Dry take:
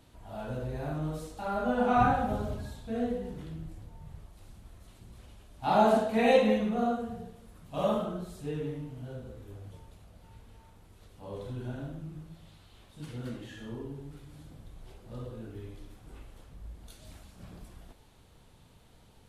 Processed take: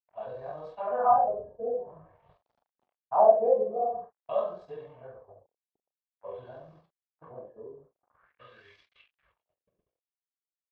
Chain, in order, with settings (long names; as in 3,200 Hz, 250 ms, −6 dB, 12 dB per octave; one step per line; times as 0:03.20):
noise gate −44 dBFS, range −27 dB
comb filter 1.8 ms, depth 63%
in parallel at +1.5 dB: downward compressor 4 to 1, threshold −41 dBFS, peak gain reduction 22 dB
on the sum: bit-depth reduction 10 bits, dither none
band-pass filter sweep 780 Hz → 2,900 Hz, 0:13.21–0:16.56
on a send: ambience of single reflections 32 ms −12.5 dB, 62 ms −8 dB
on the sum: auto-filter low-pass sine 0.27 Hz 420–5,100 Hz
tempo change 1.8×